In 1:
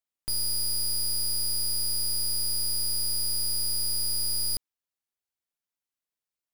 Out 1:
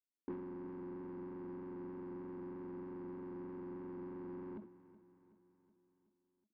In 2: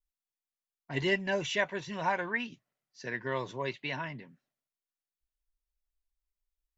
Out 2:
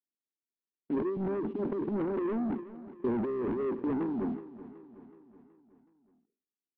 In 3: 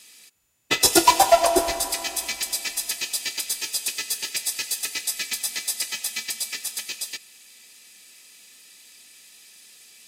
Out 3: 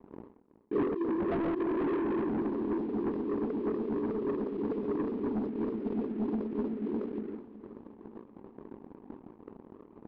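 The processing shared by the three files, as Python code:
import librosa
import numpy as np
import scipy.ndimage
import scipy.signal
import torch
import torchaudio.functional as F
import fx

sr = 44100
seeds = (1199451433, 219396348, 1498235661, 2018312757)

p1 = fx.octave_divider(x, sr, octaves=2, level_db=-5.0)
p2 = scipy.signal.sosfilt(scipy.signal.ellip(3, 1.0, 60, [210.0, 420.0], 'bandpass', fs=sr, output='sos'), p1)
p3 = fx.over_compress(p2, sr, threshold_db=-43.0, ratio=-1.0)
p4 = fx.transient(p3, sr, attack_db=-10, sustain_db=12)
p5 = fx.leveller(p4, sr, passes=3)
p6 = 10.0 ** (-34.0 / 20.0) * np.tanh(p5 / 10.0 ** (-34.0 / 20.0))
p7 = fx.transient(p6, sr, attack_db=8, sustain_db=-4)
p8 = fx.vibrato(p7, sr, rate_hz=3.2, depth_cents=12.0)
p9 = fx.air_absorb(p8, sr, metres=370.0)
p10 = p9 + fx.echo_feedback(p9, sr, ms=373, feedback_pct=55, wet_db=-16, dry=0)
p11 = fx.sustainer(p10, sr, db_per_s=130.0)
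y = p11 * 10.0 ** (6.5 / 20.0)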